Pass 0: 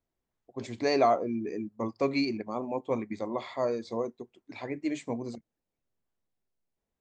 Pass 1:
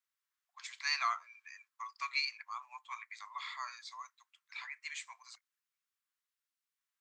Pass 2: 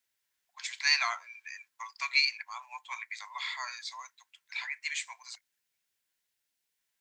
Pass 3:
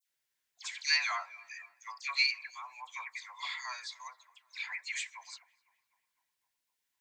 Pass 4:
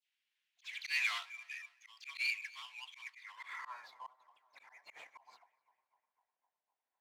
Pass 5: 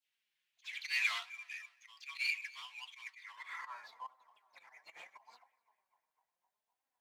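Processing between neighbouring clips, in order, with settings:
Butterworth high-pass 1,100 Hz 48 dB per octave; level +1.5 dB
parametric band 1,200 Hz −15 dB 0.28 octaves; level +9 dB
all-pass dispersion lows, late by 94 ms, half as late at 1,900 Hz; tape delay 253 ms, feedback 74%, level −23 dB, low-pass 1,800 Hz; level −2.5 dB
each half-wave held at its own peak; band-pass filter sweep 2,800 Hz → 740 Hz, 0:03.08–0:03.94; volume swells 170 ms; level +2 dB
flanger 0.73 Hz, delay 3.6 ms, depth 3 ms, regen +50%; level +4.5 dB

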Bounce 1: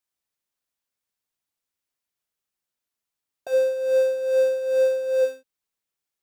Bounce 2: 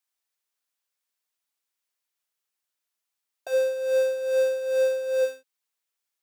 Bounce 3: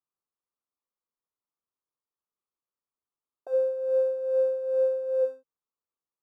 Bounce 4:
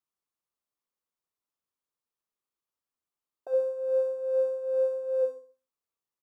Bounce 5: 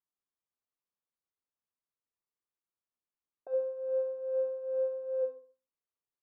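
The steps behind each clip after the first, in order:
high-pass filter 740 Hz 6 dB per octave; level +2 dB
drawn EQ curve 480 Hz 0 dB, 680 Hz −7 dB, 1,200 Hz −1 dB, 1,800 Hz −26 dB
repeating echo 66 ms, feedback 37%, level −10 dB
high-frequency loss of the air 420 metres; level −4 dB

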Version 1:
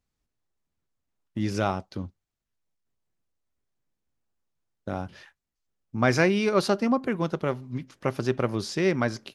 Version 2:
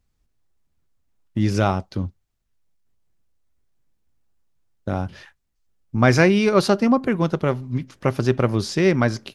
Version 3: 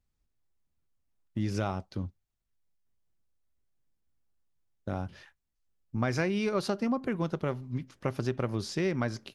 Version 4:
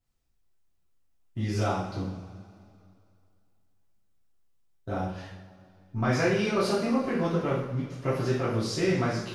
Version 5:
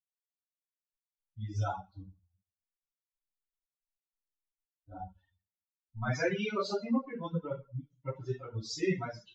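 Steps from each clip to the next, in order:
low-shelf EQ 110 Hz +9.5 dB; level +5 dB
downward compressor, threshold −16 dBFS, peak gain reduction 6.5 dB; level −9 dB
coupled-rooms reverb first 0.66 s, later 2.5 s, from −16 dB, DRR −9.5 dB; level −5 dB
spectral dynamics exaggerated over time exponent 3; Ogg Vorbis 96 kbit/s 16,000 Hz

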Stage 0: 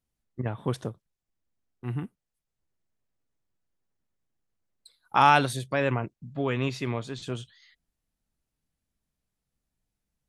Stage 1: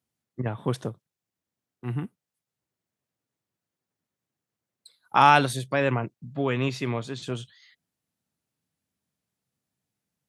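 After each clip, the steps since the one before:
high-pass filter 97 Hz 24 dB per octave
level +2 dB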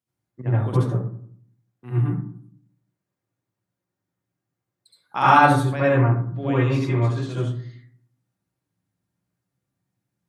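convolution reverb RT60 0.60 s, pre-delay 66 ms, DRR −9 dB
level −7 dB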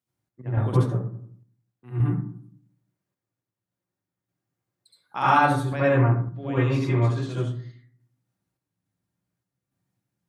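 sample-and-hold tremolo

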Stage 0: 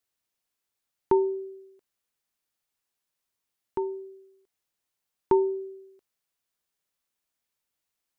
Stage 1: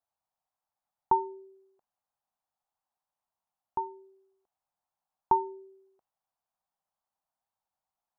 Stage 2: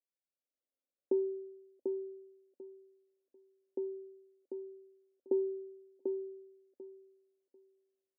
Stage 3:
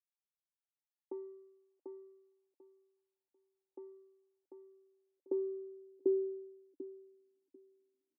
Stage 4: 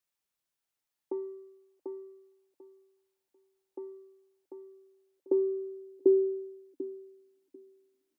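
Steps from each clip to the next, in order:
drawn EQ curve 190 Hz 0 dB, 400 Hz −9 dB, 780 Hz +14 dB, 2,100 Hz −9 dB; level −5 dB
automatic gain control gain up to 10.5 dB; elliptic band-pass filter 250–550 Hz, stop band 40 dB; repeating echo 743 ms, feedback 19%, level −5 dB; level −4.5 dB
running median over 41 samples; high-pass filter sweep 800 Hz → 260 Hz, 0:04.56–0:06.98; formant resonators in series u; level +8 dB
mains-hum notches 50/100/150/200/250 Hz; level +8.5 dB

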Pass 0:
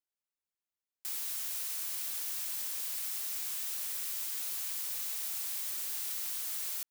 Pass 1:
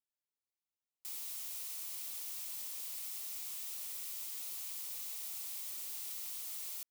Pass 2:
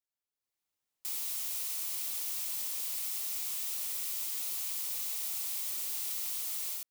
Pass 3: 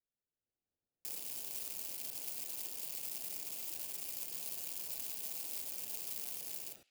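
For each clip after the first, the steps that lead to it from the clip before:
parametric band 1,600 Hz −8.5 dB 0.38 octaves; level −6 dB
automatic gain control gain up to 9.5 dB; level −2.5 dB
adaptive Wiener filter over 41 samples; feedback echo with a band-pass in the loop 69 ms, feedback 66%, band-pass 2,700 Hz, level −16.5 dB; level +5 dB

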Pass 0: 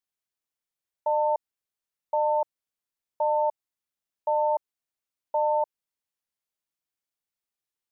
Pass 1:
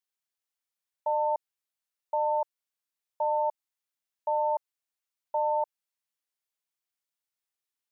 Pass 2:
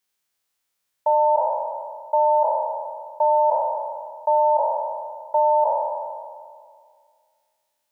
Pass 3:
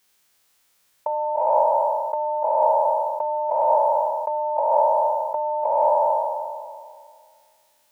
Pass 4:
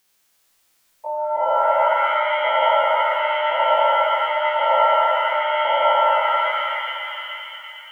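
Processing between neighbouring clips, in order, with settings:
low-shelf EQ 470 Hz −10 dB
peak hold with a decay on every bin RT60 2.04 s; level +9 dB
dynamic equaliser 840 Hz, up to −4 dB, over −28 dBFS, Q 0.73; compressor whose output falls as the input rises −29 dBFS, ratio −1; level +8.5 dB
spectrum averaged block by block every 50 ms; reverb with rising layers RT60 2.7 s, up +7 semitones, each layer −2 dB, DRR 3.5 dB

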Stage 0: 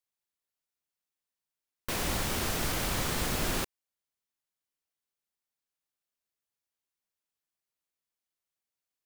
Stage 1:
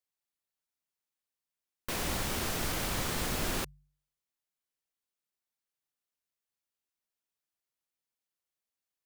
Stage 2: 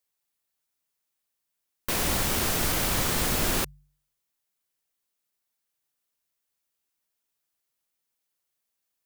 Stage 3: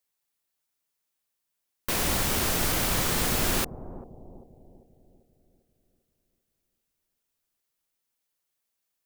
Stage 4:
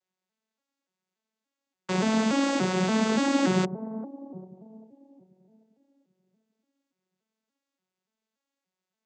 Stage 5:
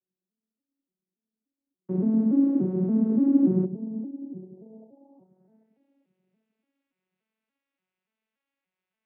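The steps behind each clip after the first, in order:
hum removal 48.67 Hz, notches 3; level −2 dB
high-shelf EQ 8,700 Hz +5.5 dB; level +6 dB
bucket-brigade delay 395 ms, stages 2,048, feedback 48%, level −12 dB
vocoder with an arpeggio as carrier minor triad, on F#3, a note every 288 ms; level +5.5 dB
low-pass filter sweep 300 Hz → 2,500 Hz, 0:04.38–0:05.82; level −2 dB

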